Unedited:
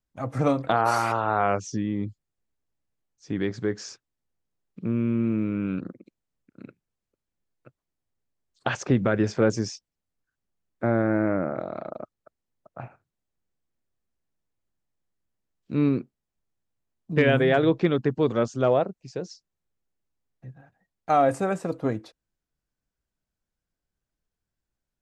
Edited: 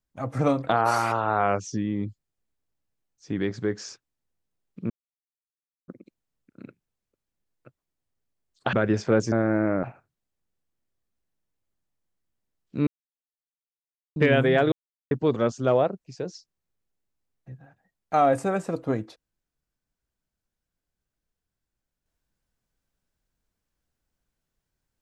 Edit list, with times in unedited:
4.90–5.88 s: mute
8.73–9.03 s: delete
9.62–10.92 s: delete
11.43–12.79 s: delete
15.83–17.12 s: mute
17.68–18.07 s: mute

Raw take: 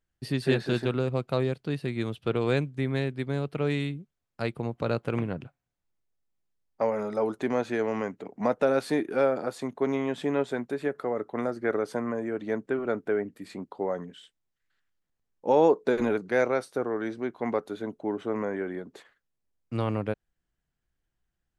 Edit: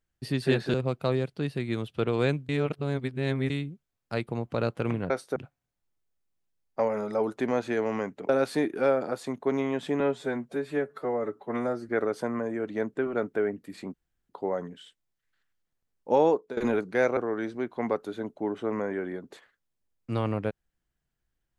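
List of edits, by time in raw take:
0.74–1.02 s: delete
2.77–3.78 s: reverse
8.31–8.64 s: delete
10.35–11.61 s: stretch 1.5×
13.66 s: insert room tone 0.35 s
15.54–15.94 s: fade out linear, to -17 dB
16.54–16.80 s: move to 5.38 s

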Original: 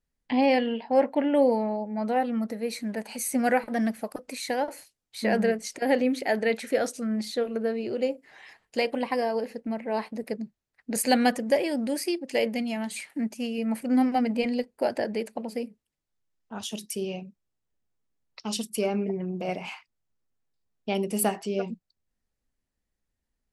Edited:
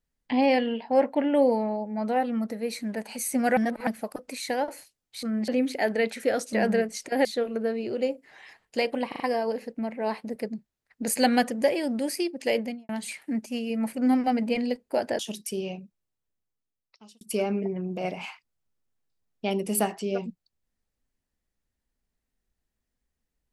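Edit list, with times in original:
3.57–3.87 s: reverse
5.23–5.95 s: swap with 7.00–7.25 s
9.08 s: stutter 0.04 s, 4 plays
12.46–12.77 s: studio fade out
15.07–16.63 s: delete
17.17–18.65 s: fade out linear

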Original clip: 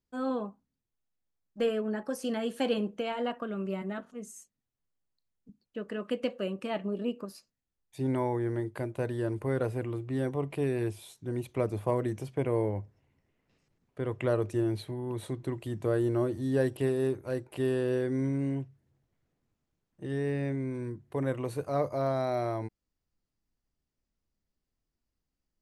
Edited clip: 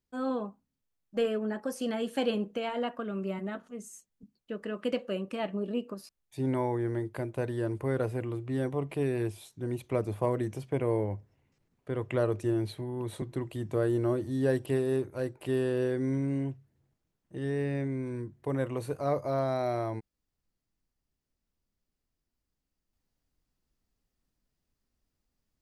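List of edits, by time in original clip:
shrink pauses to 50%

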